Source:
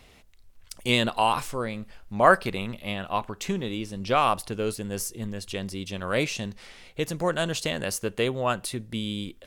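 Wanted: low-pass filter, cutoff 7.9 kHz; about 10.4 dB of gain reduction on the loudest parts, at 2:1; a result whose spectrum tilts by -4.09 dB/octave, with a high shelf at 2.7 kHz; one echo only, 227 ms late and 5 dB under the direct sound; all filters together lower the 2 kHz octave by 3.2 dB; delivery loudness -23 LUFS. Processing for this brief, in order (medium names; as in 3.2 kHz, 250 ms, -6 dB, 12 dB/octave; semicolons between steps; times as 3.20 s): low-pass 7.9 kHz; peaking EQ 2 kHz -7 dB; treble shelf 2.7 kHz +5 dB; compression 2:1, threshold -32 dBFS; delay 227 ms -5 dB; trim +9.5 dB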